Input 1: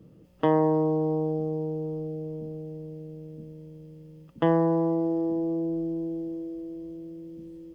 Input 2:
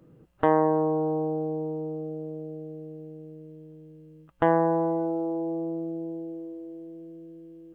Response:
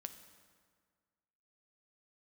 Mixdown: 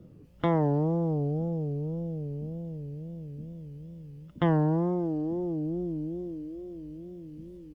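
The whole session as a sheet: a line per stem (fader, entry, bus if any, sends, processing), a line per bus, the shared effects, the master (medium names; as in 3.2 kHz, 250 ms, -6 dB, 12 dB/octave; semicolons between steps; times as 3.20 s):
-2.0 dB, 0.00 s, no send, none
-9.0 dB, 0.6 ms, polarity flipped, no send, none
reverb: none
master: bass shelf 140 Hz +8.5 dB; wow and flutter 140 cents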